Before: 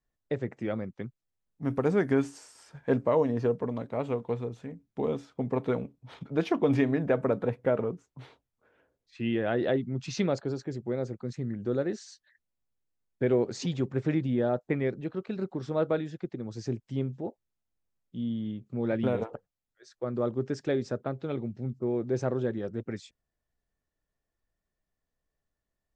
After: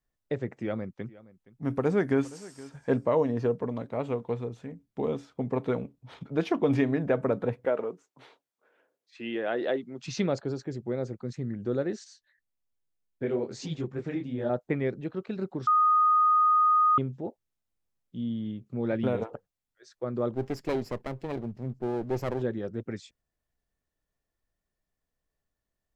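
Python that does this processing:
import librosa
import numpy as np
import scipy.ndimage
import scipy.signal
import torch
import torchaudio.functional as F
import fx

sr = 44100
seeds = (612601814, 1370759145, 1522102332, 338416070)

y = fx.echo_single(x, sr, ms=469, db=-20.0, at=(0.54, 3.06))
y = fx.highpass(y, sr, hz=340.0, slope=12, at=(7.65, 10.04))
y = fx.detune_double(y, sr, cents=41, at=(12.04, 14.5))
y = fx.lower_of_two(y, sr, delay_ms=0.4, at=(20.34, 22.42))
y = fx.edit(y, sr, fx.bleep(start_s=15.67, length_s=1.31, hz=1240.0, db=-18.5), tone=tone)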